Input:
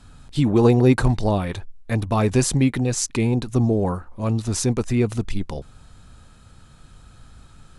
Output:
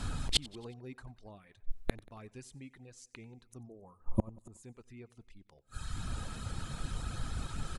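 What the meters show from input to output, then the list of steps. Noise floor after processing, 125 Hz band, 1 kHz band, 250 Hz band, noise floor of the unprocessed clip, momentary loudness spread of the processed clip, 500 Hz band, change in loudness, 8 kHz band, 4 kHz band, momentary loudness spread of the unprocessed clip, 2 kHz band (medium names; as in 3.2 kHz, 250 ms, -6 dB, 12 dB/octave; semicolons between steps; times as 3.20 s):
-69 dBFS, -21.0 dB, -19.0 dB, -23.5 dB, -49 dBFS, 19 LU, -24.5 dB, -19.0 dB, -17.5 dB, -4.5 dB, 13 LU, -16.0 dB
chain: dynamic bell 2.1 kHz, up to +5 dB, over -44 dBFS, Q 1.1; time-frequency box 3.68–4.64 s, 1.3–6.4 kHz -16 dB; reverb removal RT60 0.73 s; inverted gate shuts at -24 dBFS, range -41 dB; on a send: feedback delay 92 ms, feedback 54%, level -22.5 dB; on the sum: trim +10.5 dB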